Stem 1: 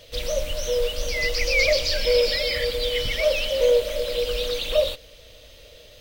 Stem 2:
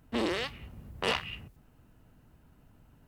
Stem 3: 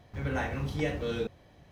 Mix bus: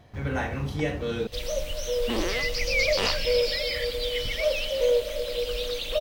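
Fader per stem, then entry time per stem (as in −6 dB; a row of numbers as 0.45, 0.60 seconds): −4.0, +1.5, +3.0 decibels; 1.20, 1.95, 0.00 seconds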